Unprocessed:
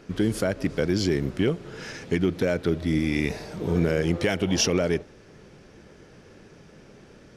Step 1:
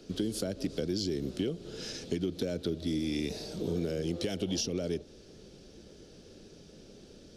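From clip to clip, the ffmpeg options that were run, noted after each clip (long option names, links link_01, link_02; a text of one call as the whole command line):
ffmpeg -i in.wav -filter_complex "[0:a]equalizer=frequency=125:width_type=o:width=1:gain=-7,equalizer=frequency=1000:width_type=o:width=1:gain=-11,equalizer=frequency=2000:width_type=o:width=1:gain=-12,equalizer=frequency=4000:width_type=o:width=1:gain=7,acrossover=split=89|290[link_01][link_02][link_03];[link_01]acompressor=threshold=-52dB:ratio=4[link_04];[link_02]acompressor=threshold=-35dB:ratio=4[link_05];[link_03]acompressor=threshold=-34dB:ratio=4[link_06];[link_04][link_05][link_06]amix=inputs=3:normalize=0" out.wav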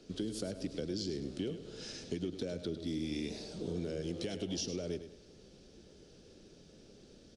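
ffmpeg -i in.wav -af "aecho=1:1:103|206|309|412:0.282|0.0958|0.0326|0.0111,volume=-5.5dB" -ar 22050 -c:a libvorbis -b:a 64k out.ogg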